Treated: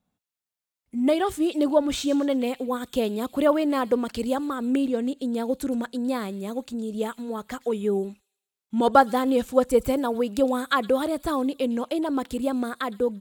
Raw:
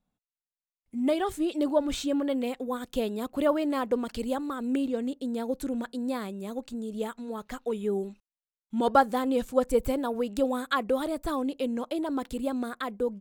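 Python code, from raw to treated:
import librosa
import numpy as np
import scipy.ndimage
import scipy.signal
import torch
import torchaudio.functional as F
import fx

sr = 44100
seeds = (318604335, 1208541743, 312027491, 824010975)

p1 = scipy.signal.sosfilt(scipy.signal.butter(2, 50.0, 'highpass', fs=sr, output='sos'), x)
p2 = p1 + fx.echo_wet_highpass(p1, sr, ms=114, feedback_pct=44, hz=3500.0, wet_db=-14, dry=0)
y = p2 * librosa.db_to_amplitude(4.5)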